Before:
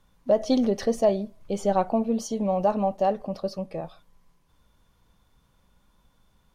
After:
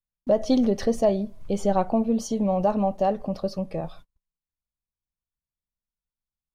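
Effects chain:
noise gate −50 dBFS, range −42 dB
low-shelf EQ 160 Hz +8.5 dB
in parallel at −1.5 dB: downward compressor, threshold −32 dBFS, peak gain reduction 16 dB
on the sum: level −2 dB

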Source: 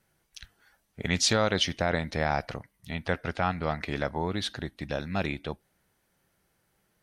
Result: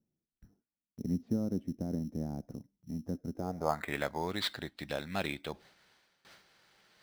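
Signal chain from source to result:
low-pass filter sweep 250 Hz → 4,300 Hz, 0:03.32–0:04.11
in parallel at −7 dB: sample-rate reduction 5,700 Hz, jitter 0%
on the sum: noise gate with hold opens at −57 dBFS
low-shelf EQ 130 Hz −10.5 dB
reversed playback
upward compression, threshold −44 dBFS
reversed playback
one half of a high-frequency compander encoder only
level −7 dB

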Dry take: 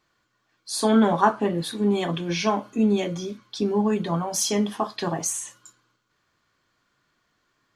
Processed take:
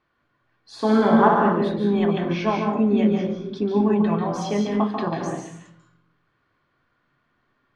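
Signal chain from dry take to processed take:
low-pass filter 2,500 Hz 12 dB per octave
0:00.73–0:01.39: flutter between parallel walls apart 10.4 metres, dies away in 0.89 s
convolution reverb RT60 0.60 s, pre-delay 142 ms, DRR 1.5 dB

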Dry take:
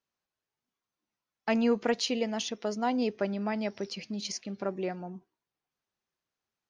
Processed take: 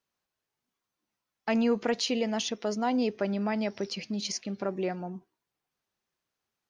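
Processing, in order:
in parallel at +2 dB: brickwall limiter −24.5 dBFS, peak gain reduction 9.5 dB
on the sum: floating-point word with a short mantissa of 8 bits
level −4 dB

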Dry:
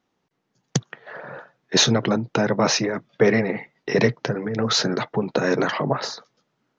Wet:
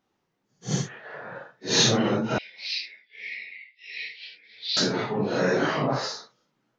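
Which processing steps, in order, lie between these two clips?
random phases in long frames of 200 ms
0:02.38–0:04.77: elliptic band-pass filter 2,200–4,700 Hz, stop band 40 dB
level −1.5 dB

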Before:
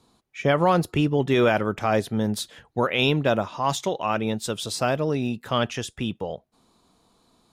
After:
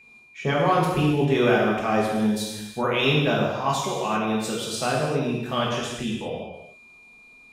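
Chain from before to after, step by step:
steady tone 2,400 Hz −45 dBFS
reverb whose tail is shaped and stops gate 420 ms falling, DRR −5 dB
level −5.5 dB

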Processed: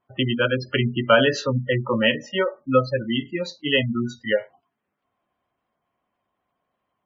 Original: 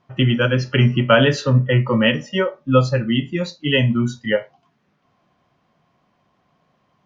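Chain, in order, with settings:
noise gate −44 dBFS, range −10 dB
gate on every frequency bin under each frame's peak −25 dB strong
parametric band 150 Hz −11 dB 0.99 octaves
level −1.5 dB

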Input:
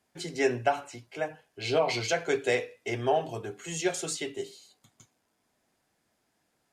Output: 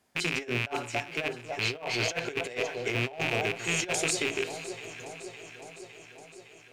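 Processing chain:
loose part that buzzes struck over −46 dBFS, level −21 dBFS
delay that swaps between a low-pass and a high-pass 280 ms, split 1,200 Hz, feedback 81%, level −13.5 dB
compressor whose output falls as the input rises −31 dBFS, ratio −0.5
level +1 dB

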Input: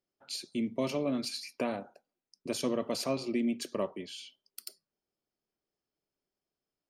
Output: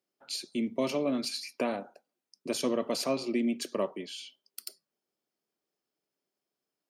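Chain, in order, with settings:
high-pass filter 180 Hz 12 dB per octave
level +2.5 dB

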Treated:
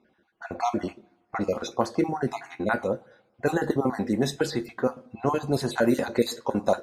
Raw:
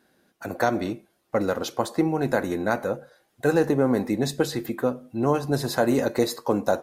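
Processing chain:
time-frequency cells dropped at random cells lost 35%
coupled-rooms reverb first 0.21 s, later 1.5 s, from −27 dB, DRR 9.5 dB
low-pass that shuts in the quiet parts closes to 2,700 Hz, open at −18.5 dBFS

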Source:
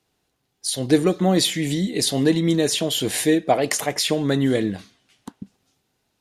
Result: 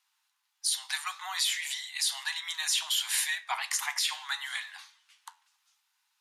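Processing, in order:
flanger 0.59 Hz, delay 9 ms, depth 7.7 ms, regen +82%
Butterworth high-pass 870 Hz 72 dB per octave
brickwall limiter −20.5 dBFS, peak gain reduction 9.5 dB
level +3 dB

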